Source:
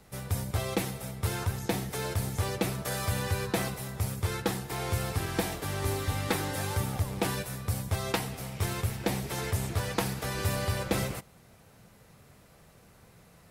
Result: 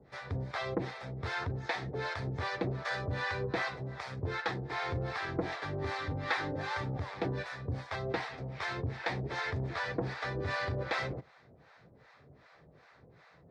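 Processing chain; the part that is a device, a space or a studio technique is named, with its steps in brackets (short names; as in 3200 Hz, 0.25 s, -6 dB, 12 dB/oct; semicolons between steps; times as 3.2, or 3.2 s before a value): guitar amplifier with harmonic tremolo (harmonic tremolo 2.6 Hz, depth 100%, crossover 630 Hz; soft clip -26.5 dBFS, distortion -15 dB; speaker cabinet 83–4200 Hz, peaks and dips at 100 Hz -7 dB, 200 Hz -10 dB, 1800 Hz +5 dB, 2900 Hz -9 dB); gain +4.5 dB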